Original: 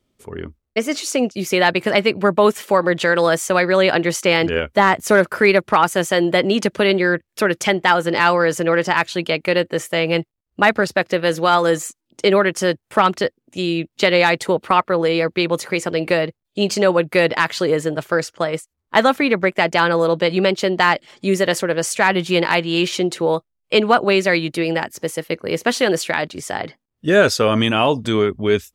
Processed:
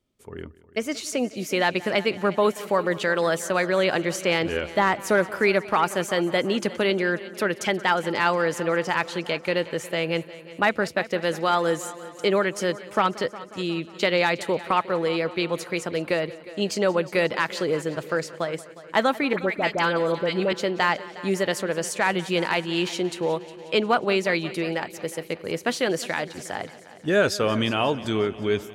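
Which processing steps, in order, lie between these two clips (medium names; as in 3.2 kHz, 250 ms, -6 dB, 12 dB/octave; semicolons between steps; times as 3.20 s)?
19.33–20.53 s: phase dispersion highs, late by 56 ms, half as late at 1.2 kHz; on a send: multi-head delay 180 ms, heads first and second, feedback 56%, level -20 dB; on the sum: trim -7 dB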